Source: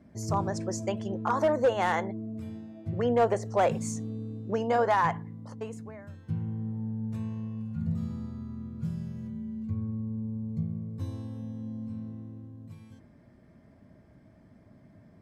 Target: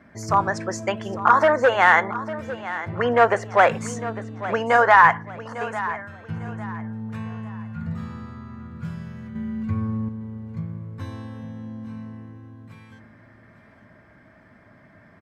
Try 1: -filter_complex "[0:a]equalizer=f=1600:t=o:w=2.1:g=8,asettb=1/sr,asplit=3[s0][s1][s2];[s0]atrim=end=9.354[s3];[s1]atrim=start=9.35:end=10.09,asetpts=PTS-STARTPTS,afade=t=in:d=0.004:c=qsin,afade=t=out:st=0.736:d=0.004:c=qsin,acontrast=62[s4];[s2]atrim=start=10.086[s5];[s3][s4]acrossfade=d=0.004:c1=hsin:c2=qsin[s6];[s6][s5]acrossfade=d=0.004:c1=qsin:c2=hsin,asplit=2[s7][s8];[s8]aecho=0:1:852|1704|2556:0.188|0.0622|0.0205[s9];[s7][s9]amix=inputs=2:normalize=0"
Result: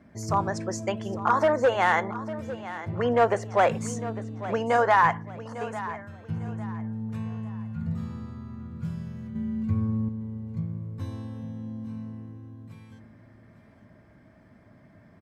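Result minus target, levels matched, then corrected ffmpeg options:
2 kHz band -3.0 dB
-filter_complex "[0:a]equalizer=f=1600:t=o:w=2.1:g=18,asettb=1/sr,asplit=3[s0][s1][s2];[s0]atrim=end=9.354[s3];[s1]atrim=start=9.35:end=10.09,asetpts=PTS-STARTPTS,afade=t=in:d=0.004:c=qsin,afade=t=out:st=0.736:d=0.004:c=qsin,acontrast=62[s4];[s2]atrim=start=10.086[s5];[s3][s4]acrossfade=d=0.004:c1=hsin:c2=qsin[s6];[s6][s5]acrossfade=d=0.004:c1=qsin:c2=hsin,asplit=2[s7][s8];[s8]aecho=0:1:852|1704|2556:0.188|0.0622|0.0205[s9];[s7][s9]amix=inputs=2:normalize=0"

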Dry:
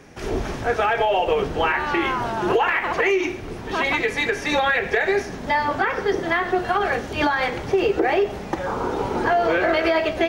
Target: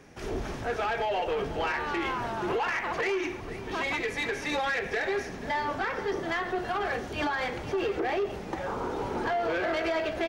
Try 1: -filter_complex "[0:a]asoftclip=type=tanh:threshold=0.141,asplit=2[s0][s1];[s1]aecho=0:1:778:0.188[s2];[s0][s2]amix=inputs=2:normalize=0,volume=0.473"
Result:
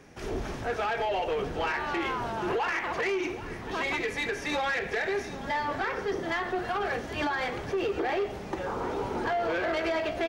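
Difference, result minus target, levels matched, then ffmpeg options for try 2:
echo 290 ms late
-filter_complex "[0:a]asoftclip=type=tanh:threshold=0.141,asplit=2[s0][s1];[s1]aecho=0:1:488:0.188[s2];[s0][s2]amix=inputs=2:normalize=0,volume=0.473"

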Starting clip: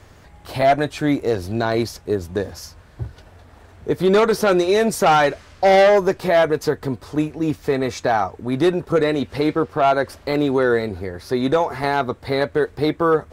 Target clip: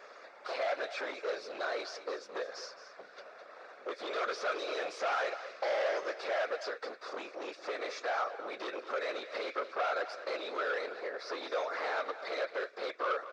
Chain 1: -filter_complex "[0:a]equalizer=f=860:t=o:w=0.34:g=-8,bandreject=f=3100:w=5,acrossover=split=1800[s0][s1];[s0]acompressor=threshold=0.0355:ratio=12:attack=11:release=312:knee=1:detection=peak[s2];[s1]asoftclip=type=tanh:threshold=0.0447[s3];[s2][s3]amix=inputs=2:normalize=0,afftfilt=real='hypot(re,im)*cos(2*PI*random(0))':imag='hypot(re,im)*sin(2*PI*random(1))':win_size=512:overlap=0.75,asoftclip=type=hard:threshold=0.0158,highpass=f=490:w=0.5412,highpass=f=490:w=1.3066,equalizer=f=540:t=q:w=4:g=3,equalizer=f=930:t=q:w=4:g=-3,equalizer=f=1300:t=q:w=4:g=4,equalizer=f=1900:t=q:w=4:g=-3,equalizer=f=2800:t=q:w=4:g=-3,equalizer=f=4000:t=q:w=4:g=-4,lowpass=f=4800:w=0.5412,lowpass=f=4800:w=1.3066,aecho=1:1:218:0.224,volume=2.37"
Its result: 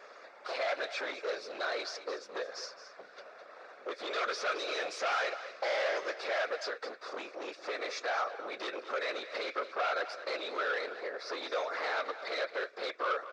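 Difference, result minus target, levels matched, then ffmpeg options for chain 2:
saturation: distortion -8 dB
-filter_complex "[0:a]equalizer=f=860:t=o:w=0.34:g=-8,bandreject=f=3100:w=5,acrossover=split=1800[s0][s1];[s0]acompressor=threshold=0.0355:ratio=12:attack=11:release=312:knee=1:detection=peak[s2];[s1]asoftclip=type=tanh:threshold=0.0133[s3];[s2][s3]amix=inputs=2:normalize=0,afftfilt=real='hypot(re,im)*cos(2*PI*random(0))':imag='hypot(re,im)*sin(2*PI*random(1))':win_size=512:overlap=0.75,asoftclip=type=hard:threshold=0.0158,highpass=f=490:w=0.5412,highpass=f=490:w=1.3066,equalizer=f=540:t=q:w=4:g=3,equalizer=f=930:t=q:w=4:g=-3,equalizer=f=1300:t=q:w=4:g=4,equalizer=f=1900:t=q:w=4:g=-3,equalizer=f=2800:t=q:w=4:g=-3,equalizer=f=4000:t=q:w=4:g=-4,lowpass=f=4800:w=0.5412,lowpass=f=4800:w=1.3066,aecho=1:1:218:0.224,volume=2.37"

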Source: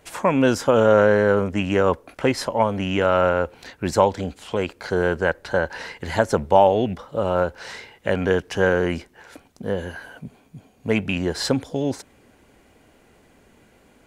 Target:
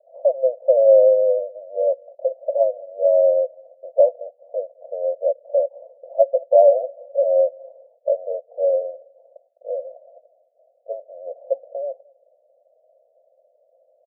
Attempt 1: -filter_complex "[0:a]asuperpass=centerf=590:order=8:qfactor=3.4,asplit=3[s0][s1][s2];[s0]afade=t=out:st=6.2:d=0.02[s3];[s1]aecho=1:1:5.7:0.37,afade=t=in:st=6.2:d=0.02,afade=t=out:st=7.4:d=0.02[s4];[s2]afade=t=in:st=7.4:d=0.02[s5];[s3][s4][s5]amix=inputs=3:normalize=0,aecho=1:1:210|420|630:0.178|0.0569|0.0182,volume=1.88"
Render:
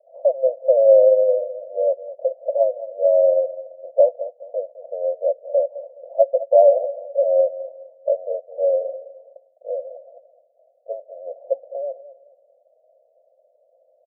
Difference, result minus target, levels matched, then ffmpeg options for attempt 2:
echo-to-direct +11.5 dB
-filter_complex "[0:a]asuperpass=centerf=590:order=8:qfactor=3.4,asplit=3[s0][s1][s2];[s0]afade=t=out:st=6.2:d=0.02[s3];[s1]aecho=1:1:5.7:0.37,afade=t=in:st=6.2:d=0.02,afade=t=out:st=7.4:d=0.02[s4];[s2]afade=t=in:st=7.4:d=0.02[s5];[s3][s4][s5]amix=inputs=3:normalize=0,aecho=1:1:210|420:0.0473|0.0151,volume=1.88"

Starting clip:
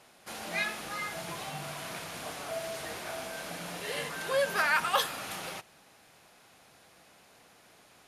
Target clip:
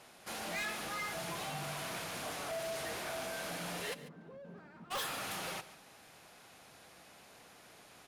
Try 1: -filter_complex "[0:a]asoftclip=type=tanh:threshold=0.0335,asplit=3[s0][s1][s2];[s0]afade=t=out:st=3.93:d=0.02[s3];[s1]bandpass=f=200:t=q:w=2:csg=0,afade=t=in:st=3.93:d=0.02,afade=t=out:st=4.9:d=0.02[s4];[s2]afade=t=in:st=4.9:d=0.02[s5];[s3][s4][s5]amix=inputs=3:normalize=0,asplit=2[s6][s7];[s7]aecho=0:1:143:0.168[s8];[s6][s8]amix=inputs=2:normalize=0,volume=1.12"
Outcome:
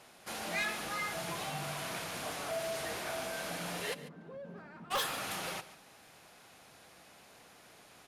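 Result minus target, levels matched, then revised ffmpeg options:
saturation: distortion -4 dB
-filter_complex "[0:a]asoftclip=type=tanh:threshold=0.0158,asplit=3[s0][s1][s2];[s0]afade=t=out:st=3.93:d=0.02[s3];[s1]bandpass=f=200:t=q:w=2:csg=0,afade=t=in:st=3.93:d=0.02,afade=t=out:st=4.9:d=0.02[s4];[s2]afade=t=in:st=4.9:d=0.02[s5];[s3][s4][s5]amix=inputs=3:normalize=0,asplit=2[s6][s7];[s7]aecho=0:1:143:0.168[s8];[s6][s8]amix=inputs=2:normalize=0,volume=1.12"

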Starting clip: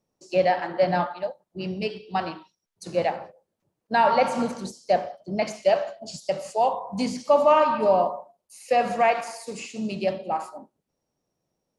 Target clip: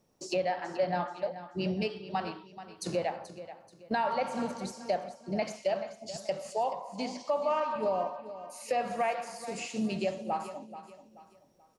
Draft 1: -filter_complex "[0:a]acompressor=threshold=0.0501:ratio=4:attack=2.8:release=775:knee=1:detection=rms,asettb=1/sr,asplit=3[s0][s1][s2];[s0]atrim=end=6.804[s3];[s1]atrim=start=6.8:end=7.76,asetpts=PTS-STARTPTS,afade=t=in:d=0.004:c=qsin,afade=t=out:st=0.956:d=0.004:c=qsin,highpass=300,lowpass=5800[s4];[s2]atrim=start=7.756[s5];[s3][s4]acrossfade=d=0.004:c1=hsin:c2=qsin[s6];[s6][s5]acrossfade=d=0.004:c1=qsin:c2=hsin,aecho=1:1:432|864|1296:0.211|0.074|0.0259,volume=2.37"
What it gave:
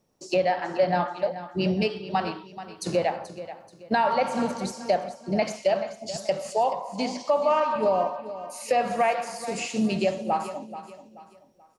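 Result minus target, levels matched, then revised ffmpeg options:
compression: peak gain reduction -7 dB
-filter_complex "[0:a]acompressor=threshold=0.0168:ratio=4:attack=2.8:release=775:knee=1:detection=rms,asettb=1/sr,asplit=3[s0][s1][s2];[s0]atrim=end=6.804[s3];[s1]atrim=start=6.8:end=7.76,asetpts=PTS-STARTPTS,afade=t=in:d=0.004:c=qsin,afade=t=out:st=0.956:d=0.004:c=qsin,highpass=300,lowpass=5800[s4];[s2]atrim=start=7.756[s5];[s3][s4]acrossfade=d=0.004:c1=hsin:c2=qsin[s6];[s6][s5]acrossfade=d=0.004:c1=qsin:c2=hsin,aecho=1:1:432|864|1296:0.211|0.074|0.0259,volume=2.37"

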